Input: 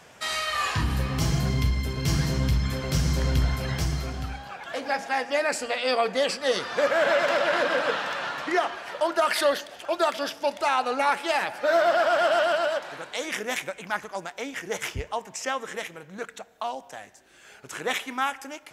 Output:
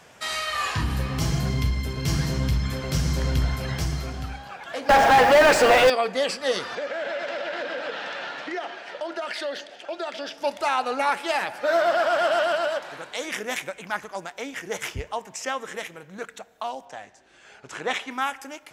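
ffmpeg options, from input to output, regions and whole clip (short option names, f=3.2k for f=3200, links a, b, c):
-filter_complex "[0:a]asettb=1/sr,asplit=3[a][b][c];[a]atrim=end=4.894[d];[b]atrim=start=4.89:end=5.9,asetpts=PTS-STARTPTS,afade=t=in:d=0.004:c=qsin,afade=t=out:st=1.006:d=0.004:c=qsin,equalizer=f=610:w=0.46:g=5.5,asplit=2[e][f];[f]highpass=f=720:p=1,volume=32dB,asoftclip=type=tanh:threshold=-7.5dB[g];[e][g]amix=inputs=2:normalize=0,lowpass=f=1.7k:p=1,volume=-6dB,acrusher=bits=5:mix=0:aa=0.5[h];[c]atrim=start=5.896[i];[d][h]acrossfade=d=0.004:c1=hsin:c2=qsin[j];[j][i]acrossfade=d=0.004:c1=qsin:c2=hsin,asettb=1/sr,asplit=3[k][l][m];[k]atrim=end=6.754[n];[l]atrim=start=6.75:end=10.38,asetpts=PTS-STARTPTS,afade=t=in:d=0.004:c=qsin,afade=t=out:st=3.626:d=0.004:c=qsin,equalizer=f=1.1k:w=3.2:g=-9,acompressor=threshold=-28dB:ratio=3:attack=3.2:release=140:knee=1:detection=peak,highpass=210,lowpass=5.6k[o];[m]atrim=start=10.376[p];[n][o]acrossfade=d=0.004:c1=hsin:c2=qsin[q];[q][p]acrossfade=d=0.004:c1=qsin:c2=hsin,asettb=1/sr,asplit=3[r][s][t];[r]atrim=end=16.854[u];[s]atrim=start=16.85:end=18.11,asetpts=PTS-STARTPTS,afade=t=in:d=0.004:c=qsin,afade=t=out:st=1.256:d=0.004:c=qsin,lowpass=6.6k,equalizer=f=800:t=o:w=0.85:g=3[v];[t]atrim=start=18.106[w];[u][v]acrossfade=d=0.004:c1=hsin:c2=qsin[x];[x][w]acrossfade=d=0.004:c1=qsin:c2=hsin"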